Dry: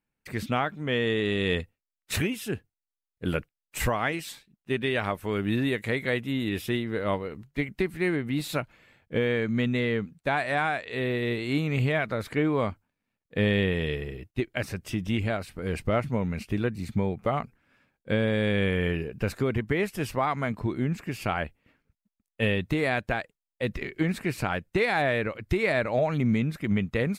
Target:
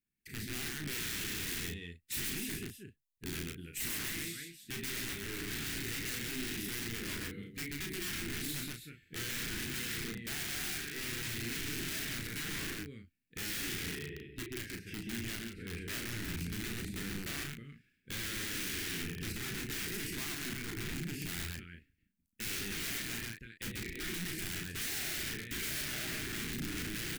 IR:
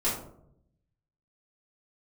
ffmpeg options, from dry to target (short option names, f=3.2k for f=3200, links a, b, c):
-filter_complex "[0:a]asettb=1/sr,asplit=3[a][b][c];[a]atrim=end=13.604[d];[b]atrim=start=13.6:end=16.13,asetpts=PTS-STARTPTS,afade=t=in:d=0.004:c=qsin,afade=t=out:st=2.526:d=0.004:c=qsin,bass=f=250:g=-6,treble=f=4k:g=-14[e];[c]atrim=start=16.126[f];[d][e]acrossfade=d=0.004:c1=hsin:c2=qsin[g];[g][f]acrossfade=d=0.004:c1=qsin:c2=hsin,aecho=1:1:47|72|130|320:0.299|0.126|0.631|0.266,aeval=exprs='(mod(15*val(0)+1,2)-1)/15':c=same,asuperstop=centerf=800:order=8:qfactor=0.65,highshelf=f=8.2k:g=8.5,asoftclip=type=tanh:threshold=-22.5dB,asplit=2[h][i];[i]adelay=35,volume=-5.5dB[j];[h][j]amix=inputs=2:normalize=0,volume=-8dB"